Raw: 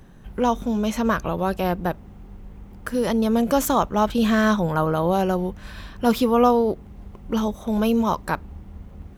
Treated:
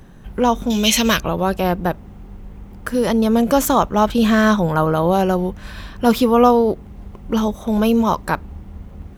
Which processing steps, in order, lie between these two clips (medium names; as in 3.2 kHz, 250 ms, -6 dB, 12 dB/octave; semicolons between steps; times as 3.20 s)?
0.70–1.20 s: resonant high shelf 1.9 kHz +13.5 dB, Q 1.5; trim +4.5 dB